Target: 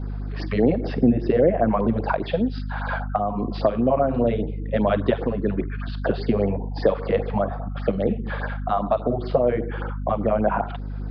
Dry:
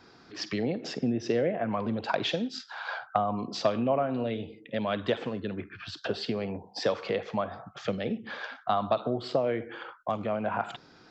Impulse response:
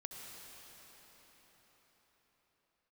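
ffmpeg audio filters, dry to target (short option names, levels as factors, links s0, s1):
-af "bass=f=250:g=-5,treble=f=4000:g=-12,aeval=exprs='val(0)+0.00794*(sin(2*PI*50*n/s)+sin(2*PI*2*50*n/s)/2+sin(2*PI*3*50*n/s)/3+sin(2*PI*4*50*n/s)/4+sin(2*PI*5*50*n/s)/5)':c=same,alimiter=limit=0.112:level=0:latency=1:release=459,tiltshelf=f=1200:g=6,aresample=11025,aresample=44100,afftfilt=real='re*(1-between(b*sr/1024,260*pow(3300/260,0.5+0.5*sin(2*PI*5*pts/sr))/1.41,260*pow(3300/260,0.5+0.5*sin(2*PI*5*pts/sr))*1.41))':imag='im*(1-between(b*sr/1024,260*pow(3300/260,0.5+0.5*sin(2*PI*5*pts/sr))/1.41,260*pow(3300/260,0.5+0.5*sin(2*PI*5*pts/sr))*1.41))':win_size=1024:overlap=0.75,volume=2.66"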